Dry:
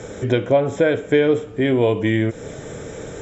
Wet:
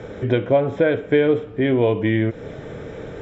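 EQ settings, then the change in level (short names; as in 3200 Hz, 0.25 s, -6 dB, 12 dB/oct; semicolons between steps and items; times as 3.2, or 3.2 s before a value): air absorption 330 m; high shelf 3600 Hz +8 dB; 0.0 dB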